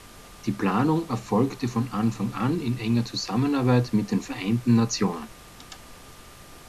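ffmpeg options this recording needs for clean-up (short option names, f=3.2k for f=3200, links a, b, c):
-af "bandreject=f=1.2k:w=30,afftdn=nr=23:nf=-47"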